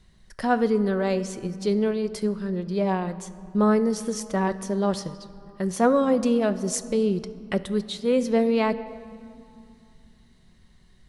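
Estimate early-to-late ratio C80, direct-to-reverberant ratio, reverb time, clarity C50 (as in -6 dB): 16.0 dB, 11.0 dB, 2.5 s, 14.5 dB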